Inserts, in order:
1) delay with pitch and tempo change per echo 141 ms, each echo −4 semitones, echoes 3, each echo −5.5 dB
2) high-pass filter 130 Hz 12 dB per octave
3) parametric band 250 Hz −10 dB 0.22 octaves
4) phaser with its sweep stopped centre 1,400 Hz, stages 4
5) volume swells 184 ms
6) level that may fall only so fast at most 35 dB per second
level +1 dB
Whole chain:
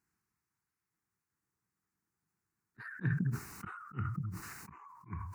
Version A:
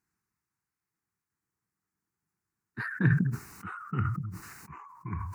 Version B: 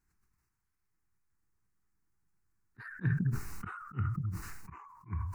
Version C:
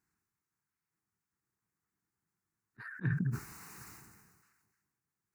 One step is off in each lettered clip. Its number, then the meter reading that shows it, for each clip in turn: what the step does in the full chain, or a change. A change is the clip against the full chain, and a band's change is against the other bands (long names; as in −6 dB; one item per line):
5, change in crest factor +3.0 dB
2, 125 Hz band +3.0 dB
1, 1 kHz band −7.5 dB